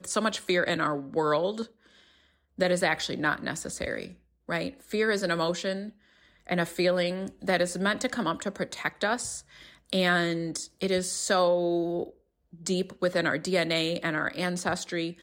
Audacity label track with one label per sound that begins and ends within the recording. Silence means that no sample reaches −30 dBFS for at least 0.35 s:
2.590000	4.050000	sound
4.490000	5.810000	sound
6.490000	9.380000	sound
9.930000	12.030000	sound